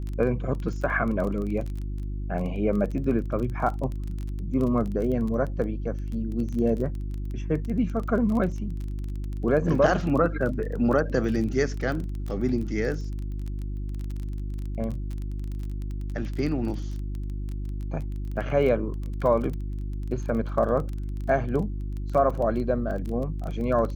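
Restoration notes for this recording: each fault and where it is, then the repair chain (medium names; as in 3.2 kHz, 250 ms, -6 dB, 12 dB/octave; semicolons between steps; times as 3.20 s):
crackle 21 per s -31 dBFS
hum 50 Hz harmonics 7 -31 dBFS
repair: de-click; de-hum 50 Hz, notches 7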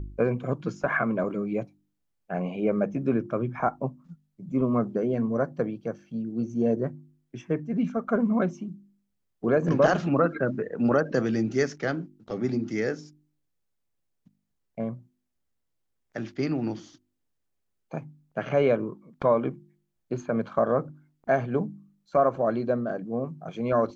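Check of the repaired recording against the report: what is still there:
nothing left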